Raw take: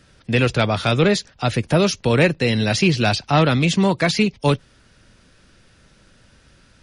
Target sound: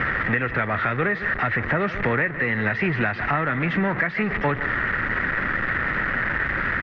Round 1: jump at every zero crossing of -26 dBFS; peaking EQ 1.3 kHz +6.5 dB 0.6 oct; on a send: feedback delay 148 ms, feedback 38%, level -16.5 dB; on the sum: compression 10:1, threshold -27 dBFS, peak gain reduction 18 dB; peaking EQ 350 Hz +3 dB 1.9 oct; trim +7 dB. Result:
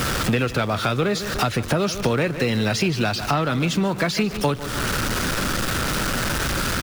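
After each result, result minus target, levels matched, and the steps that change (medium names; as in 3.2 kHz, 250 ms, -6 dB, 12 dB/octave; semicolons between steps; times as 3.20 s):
2 kHz band -6.0 dB; jump at every zero crossing: distortion -7 dB
add after jump at every zero crossing: four-pole ladder low-pass 2 kHz, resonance 80%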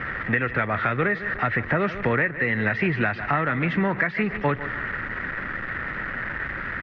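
jump at every zero crossing: distortion -7 dB
change: jump at every zero crossing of -17 dBFS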